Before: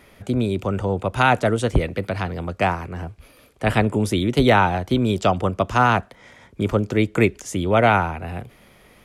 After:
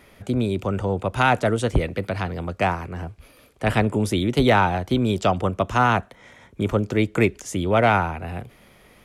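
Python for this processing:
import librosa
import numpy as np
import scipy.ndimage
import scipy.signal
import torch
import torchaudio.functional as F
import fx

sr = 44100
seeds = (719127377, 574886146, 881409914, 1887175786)

p1 = 10.0 ** (-12.0 / 20.0) * np.tanh(x / 10.0 ** (-12.0 / 20.0))
p2 = x + F.gain(torch.from_numpy(p1), -9.0).numpy()
p3 = fx.notch(p2, sr, hz=4800.0, q=8.6, at=(5.42, 6.83))
y = F.gain(torch.from_numpy(p3), -3.5).numpy()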